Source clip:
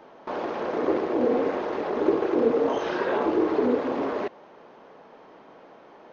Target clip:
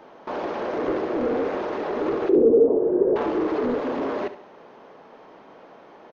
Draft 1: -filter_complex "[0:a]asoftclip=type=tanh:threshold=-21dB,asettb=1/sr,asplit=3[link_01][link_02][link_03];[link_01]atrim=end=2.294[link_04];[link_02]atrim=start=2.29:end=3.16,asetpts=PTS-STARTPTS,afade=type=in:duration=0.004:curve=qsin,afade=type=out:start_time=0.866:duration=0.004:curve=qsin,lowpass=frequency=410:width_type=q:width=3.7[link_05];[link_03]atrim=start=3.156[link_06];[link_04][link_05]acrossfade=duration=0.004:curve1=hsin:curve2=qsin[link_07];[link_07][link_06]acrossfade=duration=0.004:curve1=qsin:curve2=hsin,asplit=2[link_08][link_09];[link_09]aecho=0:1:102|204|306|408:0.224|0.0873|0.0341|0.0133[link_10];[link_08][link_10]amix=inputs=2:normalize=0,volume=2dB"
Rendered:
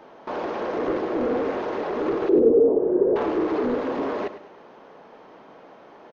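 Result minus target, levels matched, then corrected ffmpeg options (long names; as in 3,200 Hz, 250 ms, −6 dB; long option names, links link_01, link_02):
echo 32 ms late
-filter_complex "[0:a]asoftclip=type=tanh:threshold=-21dB,asettb=1/sr,asplit=3[link_01][link_02][link_03];[link_01]atrim=end=2.294[link_04];[link_02]atrim=start=2.29:end=3.16,asetpts=PTS-STARTPTS,afade=type=in:duration=0.004:curve=qsin,afade=type=out:start_time=0.866:duration=0.004:curve=qsin,lowpass=frequency=410:width_type=q:width=3.7[link_05];[link_03]atrim=start=3.156[link_06];[link_04][link_05]acrossfade=duration=0.004:curve1=hsin:curve2=qsin[link_07];[link_07][link_06]acrossfade=duration=0.004:curve1=qsin:curve2=hsin,asplit=2[link_08][link_09];[link_09]aecho=0:1:70|140|210|280:0.224|0.0873|0.0341|0.0133[link_10];[link_08][link_10]amix=inputs=2:normalize=0,volume=2dB"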